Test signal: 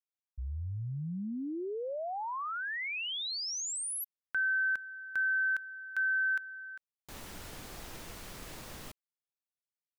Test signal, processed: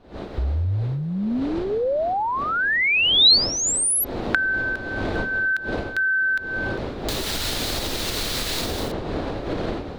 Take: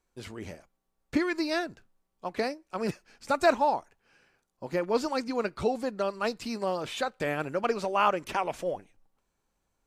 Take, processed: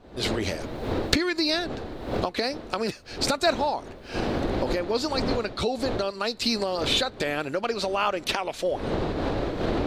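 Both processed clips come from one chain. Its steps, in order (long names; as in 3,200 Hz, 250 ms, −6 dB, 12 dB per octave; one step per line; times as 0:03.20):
wind on the microphone 490 Hz −39 dBFS
camcorder AGC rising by 53 dB per second, up to +30 dB
graphic EQ with 15 bands 160 Hz −6 dB, 1,000 Hz −3 dB, 4,000 Hz +11 dB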